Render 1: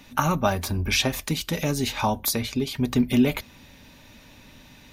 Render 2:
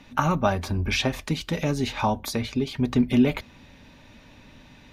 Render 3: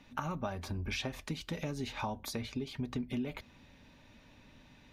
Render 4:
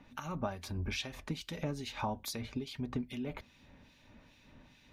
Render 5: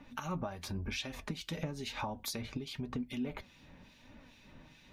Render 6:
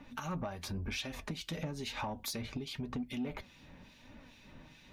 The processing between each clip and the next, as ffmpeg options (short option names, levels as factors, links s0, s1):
-af "aemphasis=mode=reproduction:type=50fm"
-af "acompressor=threshold=0.0631:ratio=6,volume=0.355"
-filter_complex "[0:a]acrossover=split=2000[s0][s1];[s0]aeval=exprs='val(0)*(1-0.7/2+0.7/2*cos(2*PI*2.4*n/s))':c=same[s2];[s1]aeval=exprs='val(0)*(1-0.7/2-0.7/2*cos(2*PI*2.4*n/s))':c=same[s3];[s2][s3]amix=inputs=2:normalize=0,volume=1.26"
-af "acompressor=threshold=0.0141:ratio=6,flanger=delay=3.3:depth=3.3:regen=67:speed=0.96:shape=triangular,volume=2.24"
-af "asoftclip=type=tanh:threshold=0.0266,volume=1.19"